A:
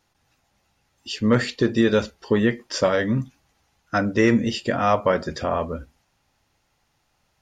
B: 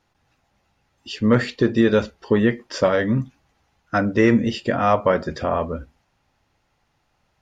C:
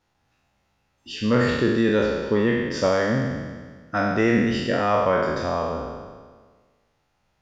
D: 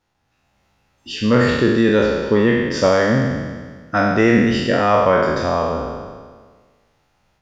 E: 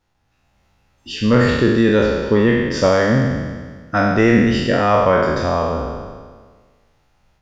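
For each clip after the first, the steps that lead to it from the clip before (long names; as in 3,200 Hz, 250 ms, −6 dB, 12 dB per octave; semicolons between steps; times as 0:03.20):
high-shelf EQ 5,000 Hz −11 dB; level +2 dB
peak hold with a decay on every bin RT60 1.55 s; level −5.5 dB
automatic gain control gain up to 7 dB
low-shelf EQ 75 Hz +9.5 dB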